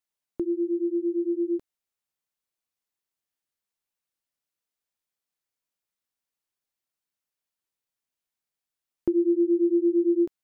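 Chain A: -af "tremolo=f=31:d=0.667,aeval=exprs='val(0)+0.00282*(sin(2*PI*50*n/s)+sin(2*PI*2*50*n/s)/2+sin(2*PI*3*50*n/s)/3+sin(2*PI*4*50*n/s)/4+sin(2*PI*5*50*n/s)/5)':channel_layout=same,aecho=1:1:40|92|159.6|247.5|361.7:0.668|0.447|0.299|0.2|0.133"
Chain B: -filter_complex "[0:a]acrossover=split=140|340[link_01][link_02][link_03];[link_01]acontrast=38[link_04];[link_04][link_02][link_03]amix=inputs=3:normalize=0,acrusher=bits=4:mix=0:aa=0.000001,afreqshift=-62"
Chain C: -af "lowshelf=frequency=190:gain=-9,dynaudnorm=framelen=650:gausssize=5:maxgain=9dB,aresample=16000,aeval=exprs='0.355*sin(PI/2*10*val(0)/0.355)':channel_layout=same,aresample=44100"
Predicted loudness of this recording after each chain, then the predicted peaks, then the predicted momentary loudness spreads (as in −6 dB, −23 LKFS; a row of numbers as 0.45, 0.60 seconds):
−25.0, −25.0, −12.5 LKFS; −13.0, −12.0, −9.0 dBFS; 14, 8, 6 LU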